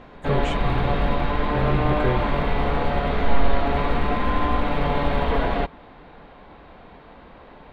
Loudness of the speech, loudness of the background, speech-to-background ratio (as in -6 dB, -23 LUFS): -29.0 LUFS, -24.0 LUFS, -5.0 dB